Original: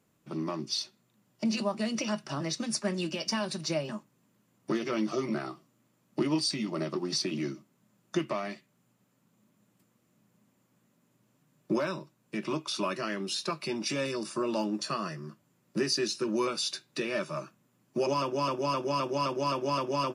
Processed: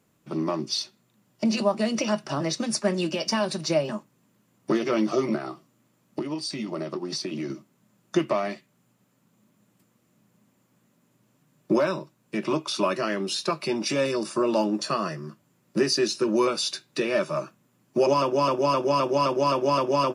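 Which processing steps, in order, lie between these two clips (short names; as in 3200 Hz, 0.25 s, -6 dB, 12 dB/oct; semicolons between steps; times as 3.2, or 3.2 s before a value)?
dynamic EQ 580 Hz, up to +5 dB, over -44 dBFS, Q 0.78; 5.35–7.5 compressor 6:1, threshold -32 dBFS, peak gain reduction 11 dB; gain +4 dB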